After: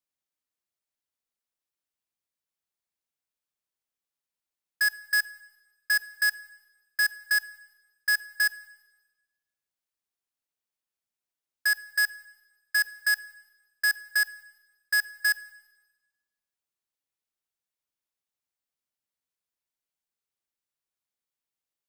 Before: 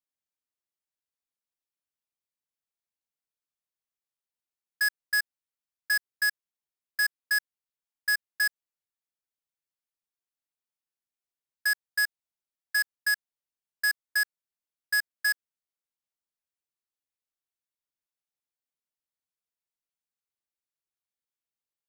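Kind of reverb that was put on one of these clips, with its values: Schroeder reverb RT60 1.1 s, DRR 18.5 dB; gain +1.5 dB

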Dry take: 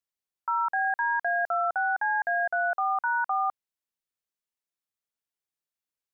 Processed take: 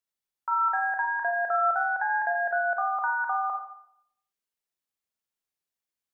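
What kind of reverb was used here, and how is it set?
Schroeder reverb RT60 0.71 s, combs from 29 ms, DRR 2 dB; gain -1 dB

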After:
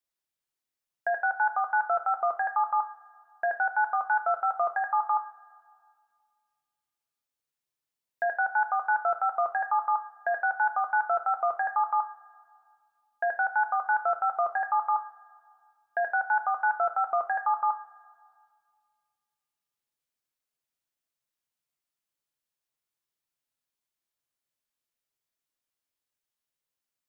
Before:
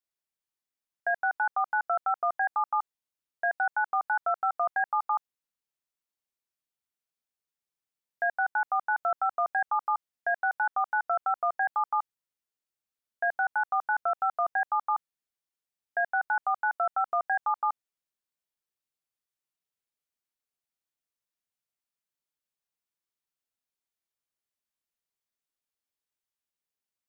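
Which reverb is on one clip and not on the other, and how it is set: two-slope reverb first 0.34 s, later 2 s, from -18 dB, DRR 6.5 dB; gain +1 dB

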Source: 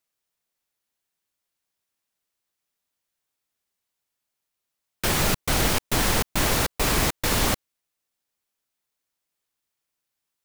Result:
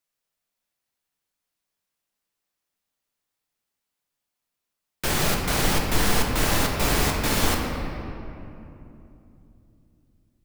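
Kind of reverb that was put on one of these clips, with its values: shoebox room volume 120 m³, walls hard, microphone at 0.39 m; gain -2.5 dB

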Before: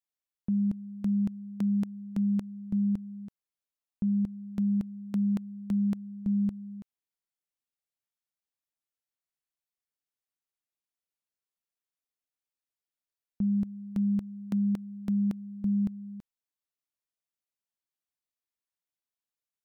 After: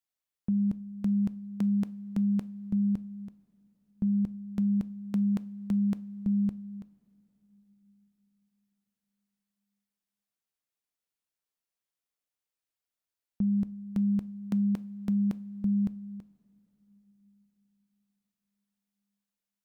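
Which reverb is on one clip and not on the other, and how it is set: two-slope reverb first 0.36 s, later 4.7 s, from -19 dB, DRR 15 dB; gain +1 dB

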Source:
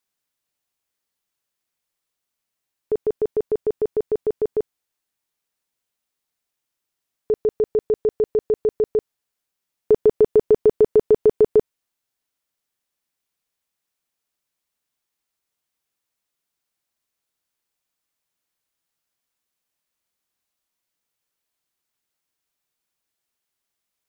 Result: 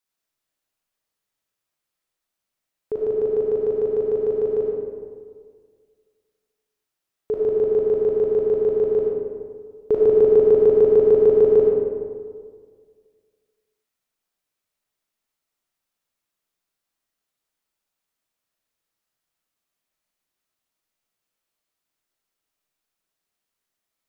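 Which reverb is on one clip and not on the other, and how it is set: digital reverb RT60 1.9 s, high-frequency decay 0.45×, pre-delay 15 ms, DRR -3 dB; gain -4.5 dB

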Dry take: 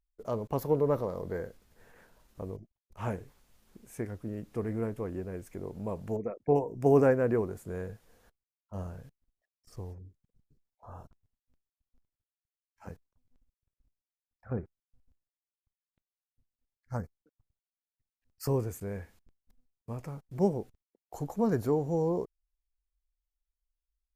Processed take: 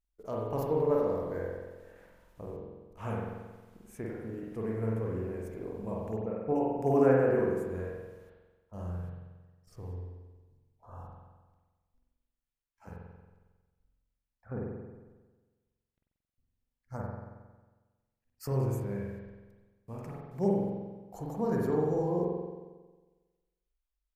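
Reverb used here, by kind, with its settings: spring tank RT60 1.3 s, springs 45 ms, chirp 50 ms, DRR -3.5 dB; gain -5 dB

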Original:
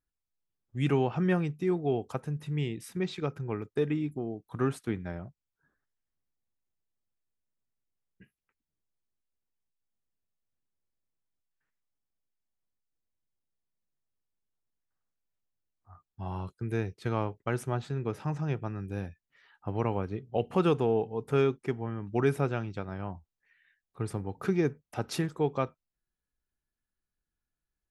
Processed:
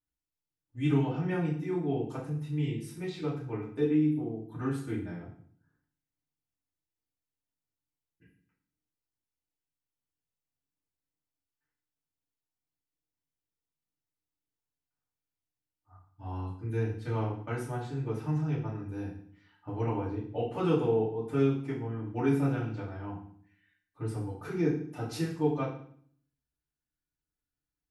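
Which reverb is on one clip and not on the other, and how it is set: FDN reverb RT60 0.55 s, low-frequency decay 1.45×, high-frequency decay 0.95×, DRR -8.5 dB; gain -12.5 dB

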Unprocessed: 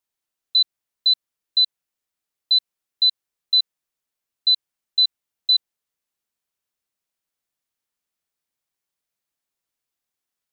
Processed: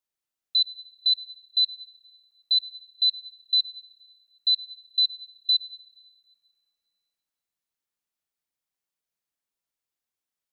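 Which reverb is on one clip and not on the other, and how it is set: plate-style reverb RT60 2.1 s, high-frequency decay 0.85×, DRR 15 dB; gain -5 dB

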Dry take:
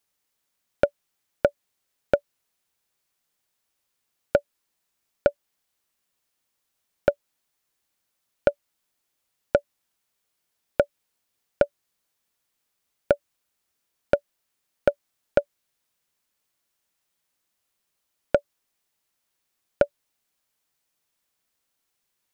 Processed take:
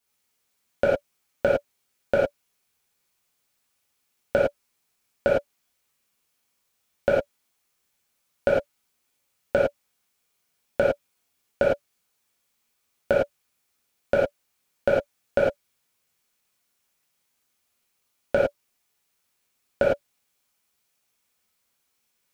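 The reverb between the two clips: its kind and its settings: non-linear reverb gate 0.13 s flat, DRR -7.5 dB; gain -4 dB

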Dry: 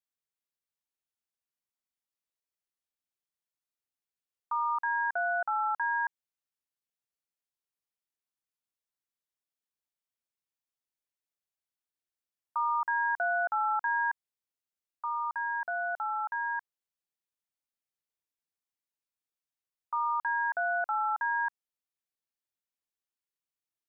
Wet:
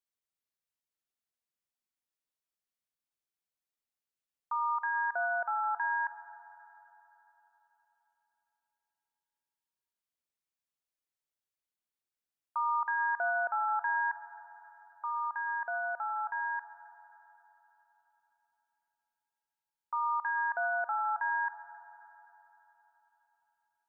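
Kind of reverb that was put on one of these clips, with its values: spring tank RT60 3.8 s, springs 34/41/49 ms, chirp 35 ms, DRR 11 dB; gain -2 dB

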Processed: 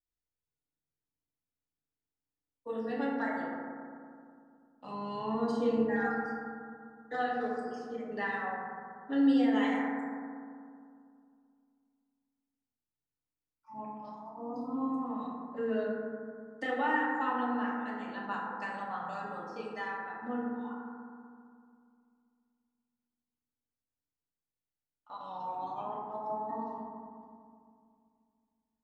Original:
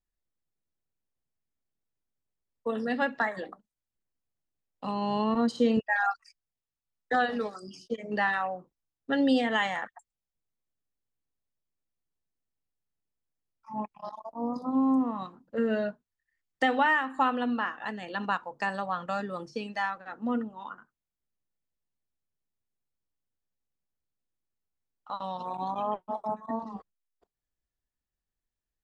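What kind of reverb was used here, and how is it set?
FDN reverb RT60 2.3 s, low-frequency decay 1.25×, high-frequency decay 0.25×, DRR -6 dB; gain -13 dB

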